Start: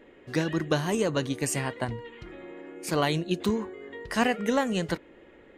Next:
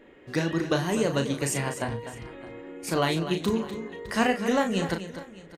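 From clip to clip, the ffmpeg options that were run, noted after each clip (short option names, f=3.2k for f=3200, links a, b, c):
-filter_complex "[0:a]asplit=2[a][b];[b]adelay=36,volume=-7dB[c];[a][c]amix=inputs=2:normalize=0,aecho=1:1:248|610:0.282|0.106"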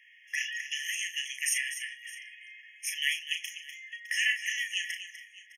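-filter_complex "[0:a]acrossover=split=410|810|3300[a][b][c][d];[b]alimiter=level_in=7.5dB:limit=-24dB:level=0:latency=1:release=242,volume=-7.5dB[e];[a][e][c][d]amix=inputs=4:normalize=0,afftfilt=real='re*eq(mod(floor(b*sr/1024/1700),2),1)':imag='im*eq(mod(floor(b*sr/1024/1700),2),1)':win_size=1024:overlap=0.75,volume=5dB"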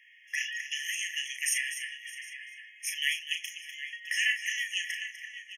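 -filter_complex "[0:a]asplit=2[a][b];[b]adelay=758,volume=-8dB,highshelf=f=4k:g=-17.1[c];[a][c]amix=inputs=2:normalize=0"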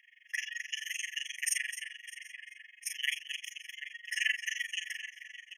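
-af "tremolo=f=23:d=0.947"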